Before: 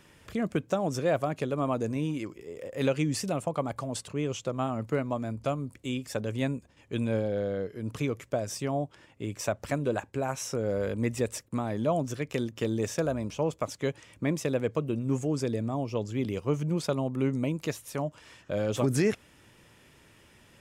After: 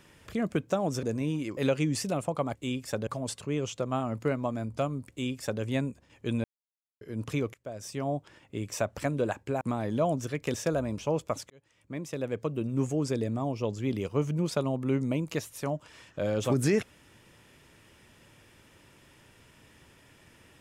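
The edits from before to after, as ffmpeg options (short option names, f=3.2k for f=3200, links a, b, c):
-filter_complex "[0:a]asplit=11[a][b][c][d][e][f][g][h][i][j][k];[a]atrim=end=1.032[l];[b]atrim=start=1.778:end=2.322[m];[c]atrim=start=2.758:end=3.742[n];[d]atrim=start=5.768:end=6.292[o];[e]atrim=start=3.738:end=7.11,asetpts=PTS-STARTPTS,afade=t=out:st=3.368:d=0.004:c=hsin[p];[f]atrim=start=7.11:end=7.68,asetpts=PTS-STARTPTS,volume=0[q];[g]atrim=start=7.68:end=8.21,asetpts=PTS-STARTPTS,afade=t=in:d=0.004:c=hsin,afade=t=out:st=0.526:d=0.004:c=hsin:silence=0.0891251[r];[h]atrim=start=8.21:end=10.282,asetpts=PTS-STARTPTS,afade=t=in:d=0.63:silence=0.0891251[s];[i]atrim=start=11.478:end=12.412[t];[j]atrim=start=12.858:end=13.82,asetpts=PTS-STARTPTS,afade=t=out:st=0.958:d=0.004:c=hsin[u];[k]atrim=start=13.82,asetpts=PTS-STARTPTS,afade=t=in:d=1.27[v];[l][m]acrossfade=d=0.004:c1=hsin:c2=hsin[w];[w][n]acrossfade=d=0.004:c1=hsin:c2=hsin[x];[x][o]acrossfade=d=0.004:c1=hsin:c2=hsin[y];[p][q][r][s]concat=n=4:v=0:a=1[z];[y][z]acrossfade=d=0.004:c1=hsin:c2=hsin[aa];[aa][t]acrossfade=d=0.004:c1=hsin:c2=hsin[ab];[u][v]concat=n=2:v=0:a=1[ac];[ab][ac]acrossfade=d=0.004:c1=hsin:c2=hsin"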